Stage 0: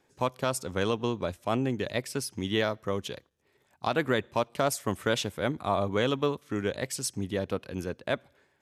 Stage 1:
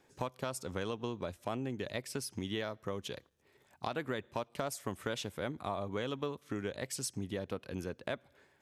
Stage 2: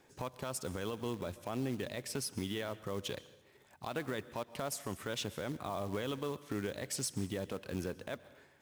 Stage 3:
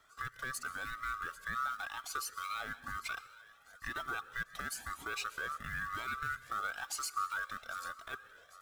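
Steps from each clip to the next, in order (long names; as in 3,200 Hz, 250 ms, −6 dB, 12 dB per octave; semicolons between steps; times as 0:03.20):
downward compressor 3 to 1, threshold −38 dBFS, peak gain reduction 12.5 dB; level +1 dB
brickwall limiter −29 dBFS, peak gain reduction 9 dB; floating-point word with a short mantissa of 2 bits; dense smooth reverb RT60 0.74 s, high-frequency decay 1×, pre-delay 110 ms, DRR 17 dB; level +2.5 dB
neighbouring bands swapped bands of 1,000 Hz; feedback echo with a high-pass in the loop 798 ms, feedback 56%, high-pass 1,200 Hz, level −18.5 dB; flanger whose copies keep moving one way rising 1 Hz; level +3 dB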